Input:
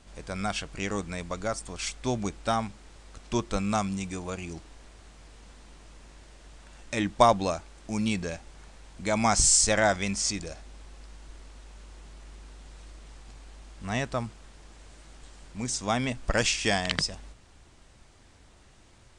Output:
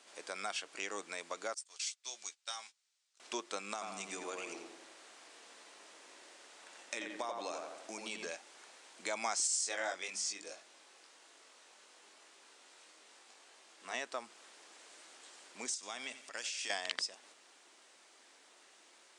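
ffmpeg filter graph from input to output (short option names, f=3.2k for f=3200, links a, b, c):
-filter_complex "[0:a]asettb=1/sr,asplit=3[a][b][c];[a]atrim=end=1.544[d];[b]atrim=start=1.54:end=3.2,asetpts=PTS-STARTPTS,afade=t=in:d=0.004:c=qsin,afade=t=out:st=1.656:d=0.004:c=qsin,agate=range=-20dB:threshold=-40dB:ratio=16:release=100:detection=peak,bandpass=f=5.8k:t=q:w=0.91,asplit=2[e][f];[f]adelay=14,volume=-8dB[g];[e][g]amix=inputs=2:normalize=0,atrim=end_sample=73206[h];[c]atrim=start=3.196[i];[d][h]acrossfade=d=0.004:c1=hsin:c2=qsin[j];[j][i]acrossfade=d=0.004:c1=qsin:c2=hsin,asettb=1/sr,asplit=3[k][l][m];[k]atrim=end=3.734[n];[l]atrim=start=3.73:end=8.3,asetpts=PTS-STARTPTS,afade=t=in:d=0.004:c=qsin,afade=t=out:st=4.566:d=0.004:c=qsin,acompressor=threshold=-29dB:ratio=4:attack=3.2:release=140:knee=1:detection=peak,asplit=2[o][p];[p]adelay=87,lowpass=f=2.2k:p=1,volume=-3dB,asplit=2[q][r];[r]adelay=87,lowpass=f=2.2k:p=1,volume=0.52,asplit=2[s][t];[t]adelay=87,lowpass=f=2.2k:p=1,volume=0.52,asplit=2[u][v];[v]adelay=87,lowpass=f=2.2k:p=1,volume=0.52,asplit=2[w][x];[x]adelay=87,lowpass=f=2.2k:p=1,volume=0.52,asplit=2[y][z];[z]adelay=87,lowpass=f=2.2k:p=1,volume=0.52,asplit=2[aa][ab];[ab]adelay=87,lowpass=f=2.2k:p=1,volume=0.52[ac];[o][q][s][u][w][y][aa][ac]amix=inputs=8:normalize=0,atrim=end_sample=201537[ad];[m]atrim=start=8.296[ae];[n][ad]acrossfade=d=0.004:c1=hsin:c2=qsin[af];[af][ae]acrossfade=d=0.004:c1=qsin:c2=hsin,asettb=1/sr,asplit=3[ag][ah][ai];[ag]atrim=end=9.474[aj];[ah]atrim=start=9.47:end=13.94,asetpts=PTS-STARTPTS,afade=t=in:d=0.004:c=qsin,afade=t=out:st=4.466:d=0.004:c=qsin,highpass=87,bandreject=f=50:t=h:w=6,bandreject=f=100:t=h:w=6,bandreject=f=150:t=h:w=6,bandreject=f=200:t=h:w=6,bandreject=f=250:t=h:w=6,bandreject=f=300:t=h:w=6,bandreject=f=350:t=h:w=6,flanger=delay=20:depth=2.4:speed=1[ak];[ai]atrim=start=13.936[al];[aj][ak]acrossfade=d=0.004:c1=hsin:c2=qsin[am];[am][al]acrossfade=d=0.004:c1=qsin:c2=hsin,asettb=1/sr,asplit=3[an][ao][ap];[an]atrim=end=15.744[aq];[ao]atrim=start=15.74:end=16.7,asetpts=PTS-STARTPTS,afade=t=in:d=0.004:c=qsin,afade=t=out:st=0.956:d=0.004:c=qsin,equalizer=f=500:w=0.32:g=-8.5,acompressor=threshold=-32dB:ratio=6:attack=3.2:release=140:knee=1:detection=peak,aecho=1:1:88|176|264|352:0.188|0.0866|0.0399|0.0183,atrim=end_sample=42336[ar];[ap]atrim=start=16.696[as];[aq][ar]acrossfade=d=0.004:c1=hsin:c2=qsin[at];[at][as]acrossfade=d=0.004:c1=qsin:c2=hsin,highpass=f=320:w=0.5412,highpass=f=320:w=1.3066,tiltshelf=f=970:g=-3.5,acompressor=threshold=-37dB:ratio=2,volume=-3dB"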